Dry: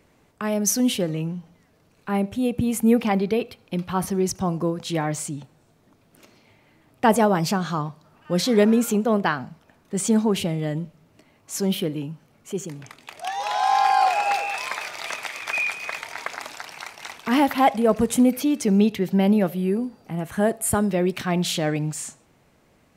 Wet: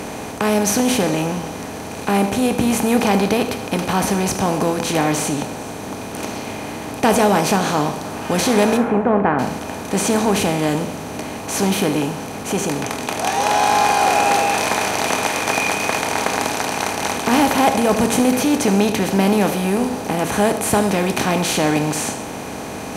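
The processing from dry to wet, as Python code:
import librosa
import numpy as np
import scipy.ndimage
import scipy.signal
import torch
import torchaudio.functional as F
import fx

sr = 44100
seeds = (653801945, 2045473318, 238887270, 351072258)

y = fx.bin_compress(x, sr, power=0.4)
y = fx.lowpass(y, sr, hz=1900.0, slope=24, at=(8.77, 9.39))
y = fx.rev_double_slope(y, sr, seeds[0], early_s=0.53, late_s=1.8, knee_db=-24, drr_db=8.0)
y = y * librosa.db_to_amplitude(-2.0)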